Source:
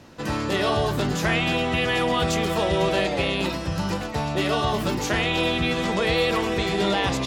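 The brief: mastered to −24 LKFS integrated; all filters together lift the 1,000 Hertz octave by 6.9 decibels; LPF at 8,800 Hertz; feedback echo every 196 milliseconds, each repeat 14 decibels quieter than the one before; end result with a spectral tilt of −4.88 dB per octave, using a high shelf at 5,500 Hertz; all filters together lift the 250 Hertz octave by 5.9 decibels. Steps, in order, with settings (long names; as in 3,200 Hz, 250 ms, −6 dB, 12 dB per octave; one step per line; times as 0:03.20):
low-pass filter 8,800 Hz
parametric band 250 Hz +7.5 dB
parametric band 1,000 Hz +8 dB
high-shelf EQ 5,500 Hz +8 dB
repeating echo 196 ms, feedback 20%, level −14 dB
level −5 dB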